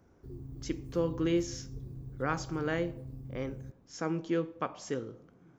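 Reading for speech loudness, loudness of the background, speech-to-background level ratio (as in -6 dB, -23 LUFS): -35.0 LUFS, -45.5 LUFS, 10.5 dB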